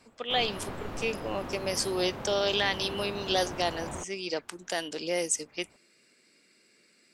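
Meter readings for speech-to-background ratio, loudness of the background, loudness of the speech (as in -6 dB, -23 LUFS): 9.5 dB, -40.0 LUFS, -30.5 LUFS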